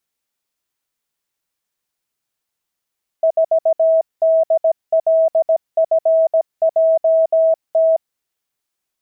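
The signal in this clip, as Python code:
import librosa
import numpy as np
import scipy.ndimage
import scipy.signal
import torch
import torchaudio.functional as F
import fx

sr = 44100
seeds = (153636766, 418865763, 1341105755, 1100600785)

y = fx.morse(sr, text='4DLFJT', wpm=17, hz=648.0, level_db=-10.0)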